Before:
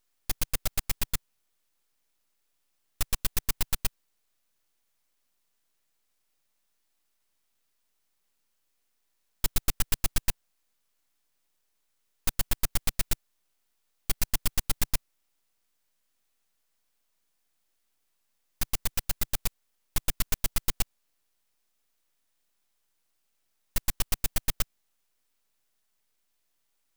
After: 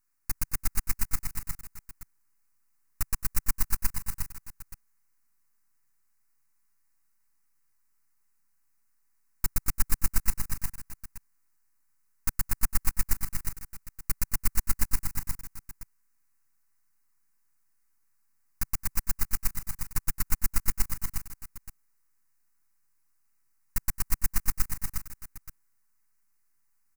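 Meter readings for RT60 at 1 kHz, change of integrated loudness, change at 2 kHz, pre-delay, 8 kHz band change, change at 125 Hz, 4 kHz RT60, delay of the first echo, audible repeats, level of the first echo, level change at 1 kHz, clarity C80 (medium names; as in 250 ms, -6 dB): no reverb, -0.5 dB, -1.0 dB, no reverb, 0.0 dB, +1.0 dB, no reverb, 220 ms, 5, -16.5 dB, 0.0 dB, no reverb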